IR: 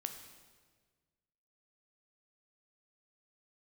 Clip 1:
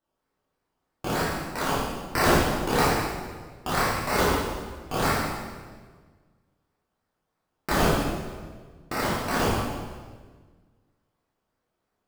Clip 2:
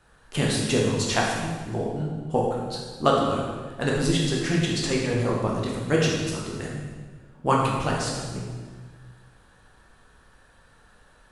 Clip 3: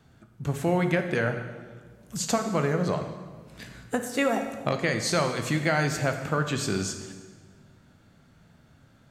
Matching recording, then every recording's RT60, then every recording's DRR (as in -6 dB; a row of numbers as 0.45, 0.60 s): 3; 1.5, 1.5, 1.5 s; -9.0, -3.5, 5.5 dB